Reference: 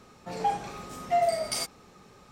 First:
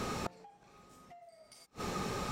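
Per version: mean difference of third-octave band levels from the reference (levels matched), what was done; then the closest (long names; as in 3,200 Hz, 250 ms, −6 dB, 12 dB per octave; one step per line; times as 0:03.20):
17.0 dB: downward compressor 16 to 1, threshold −38 dBFS, peak gain reduction 18 dB
gate with flip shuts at −40 dBFS, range −32 dB
level +16.5 dB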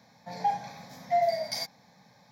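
4.5 dB: high-pass filter 120 Hz 24 dB per octave
phaser with its sweep stopped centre 1,900 Hz, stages 8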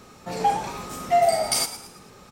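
2.0 dB: high-shelf EQ 8,500 Hz +7.5 dB
on a send: echo with shifted repeats 111 ms, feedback 42%, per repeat +68 Hz, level −13 dB
on the sum: level +5.5 dB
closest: third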